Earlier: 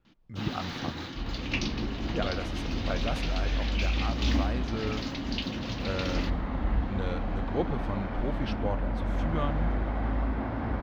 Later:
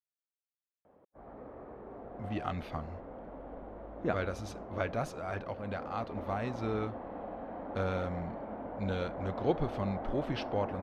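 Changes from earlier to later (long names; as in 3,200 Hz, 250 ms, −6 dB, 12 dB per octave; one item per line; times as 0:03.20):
speech: entry +1.90 s
first sound: muted
second sound: add resonant band-pass 580 Hz, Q 1.6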